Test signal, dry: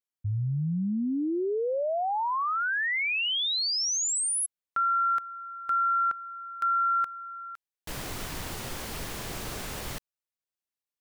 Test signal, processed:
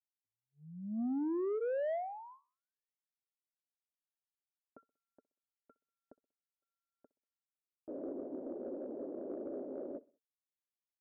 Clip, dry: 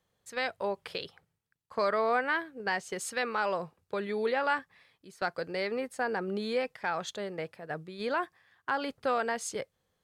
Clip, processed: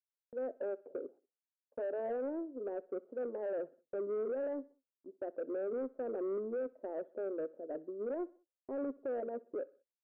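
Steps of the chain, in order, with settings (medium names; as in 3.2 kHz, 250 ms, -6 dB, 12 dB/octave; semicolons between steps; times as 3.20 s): Chebyshev band-pass 260–590 Hz, order 3; band-stop 450 Hz, Q 12; gate -59 dBFS, range -40 dB; peak limiter -33 dBFS; saturation -35.5 dBFS; on a send: feedback delay 63 ms, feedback 46%, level -23 dB; on the sum: trim +4.5 dB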